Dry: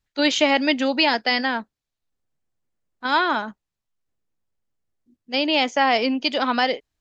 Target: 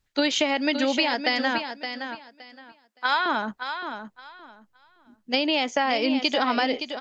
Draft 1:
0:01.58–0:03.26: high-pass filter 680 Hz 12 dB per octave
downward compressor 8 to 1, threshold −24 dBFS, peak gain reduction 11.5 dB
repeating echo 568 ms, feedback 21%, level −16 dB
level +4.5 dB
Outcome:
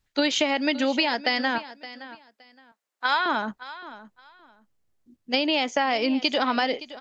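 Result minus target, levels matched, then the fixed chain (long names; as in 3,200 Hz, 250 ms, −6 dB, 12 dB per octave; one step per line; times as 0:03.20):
echo-to-direct −7.5 dB
0:01.58–0:03.26: high-pass filter 680 Hz 12 dB per octave
downward compressor 8 to 1, threshold −24 dBFS, peak gain reduction 11.5 dB
repeating echo 568 ms, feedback 21%, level −8.5 dB
level +4.5 dB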